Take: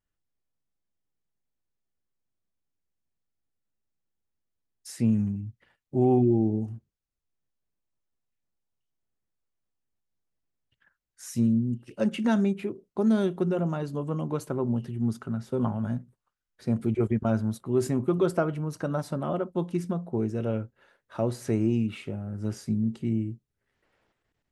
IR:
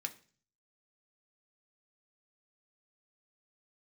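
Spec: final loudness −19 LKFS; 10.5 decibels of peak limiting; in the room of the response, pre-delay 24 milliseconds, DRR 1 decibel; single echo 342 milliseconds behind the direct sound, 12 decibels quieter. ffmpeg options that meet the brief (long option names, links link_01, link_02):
-filter_complex "[0:a]alimiter=limit=-23dB:level=0:latency=1,aecho=1:1:342:0.251,asplit=2[link_01][link_02];[1:a]atrim=start_sample=2205,adelay=24[link_03];[link_02][link_03]afir=irnorm=-1:irlink=0,volume=-0.5dB[link_04];[link_01][link_04]amix=inputs=2:normalize=0,volume=12dB"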